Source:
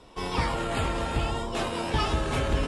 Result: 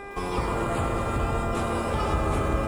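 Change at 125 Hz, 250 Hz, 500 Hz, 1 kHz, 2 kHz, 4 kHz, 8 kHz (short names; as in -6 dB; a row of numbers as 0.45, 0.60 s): +2.0, +2.5, +2.5, +2.0, -1.0, -7.0, -1.0 dB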